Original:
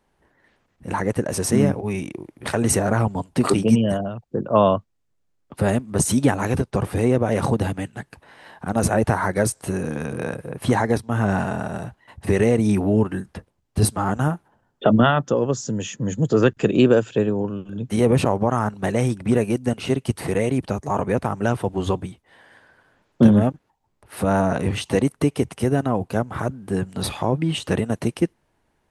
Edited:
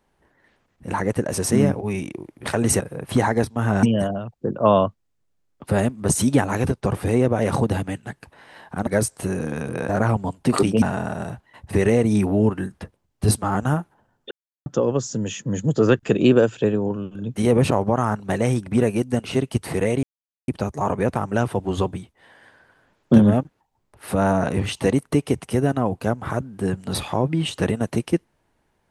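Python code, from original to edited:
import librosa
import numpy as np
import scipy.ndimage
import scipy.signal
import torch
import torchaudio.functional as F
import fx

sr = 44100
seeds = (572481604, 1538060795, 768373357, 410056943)

y = fx.edit(x, sr, fx.swap(start_s=2.8, length_s=0.93, other_s=10.33, other_length_s=1.03),
    fx.cut(start_s=8.77, length_s=0.54),
    fx.silence(start_s=14.85, length_s=0.35),
    fx.insert_silence(at_s=20.57, length_s=0.45), tone=tone)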